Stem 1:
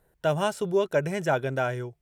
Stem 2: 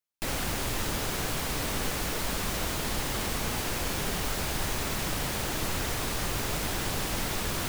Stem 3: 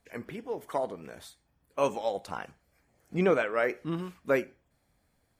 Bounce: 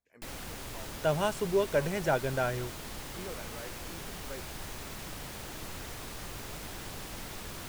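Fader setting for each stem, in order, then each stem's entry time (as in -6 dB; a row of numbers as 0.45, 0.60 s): -3.5, -11.0, -19.5 dB; 0.80, 0.00, 0.00 s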